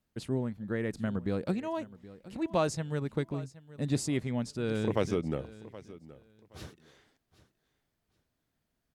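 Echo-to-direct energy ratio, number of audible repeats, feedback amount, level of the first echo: −18.0 dB, 2, 22%, −18.0 dB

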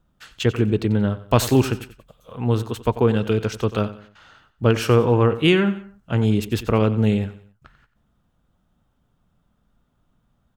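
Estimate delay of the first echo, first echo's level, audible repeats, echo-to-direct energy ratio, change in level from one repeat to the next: 91 ms, −15.0 dB, 3, −14.5 dB, −8.5 dB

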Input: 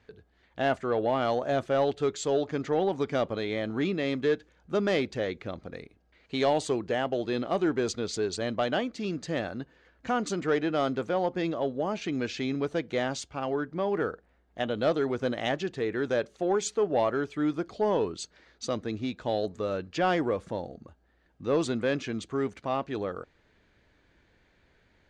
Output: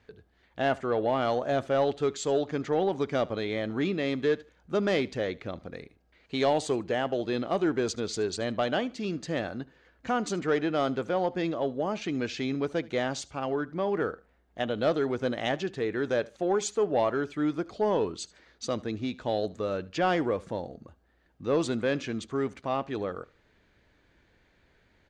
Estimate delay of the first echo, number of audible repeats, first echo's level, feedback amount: 75 ms, 2, −22.0 dB, 23%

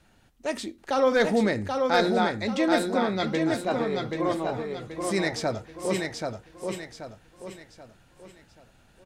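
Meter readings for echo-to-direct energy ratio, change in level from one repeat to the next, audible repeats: −3.5 dB, −8.5 dB, 4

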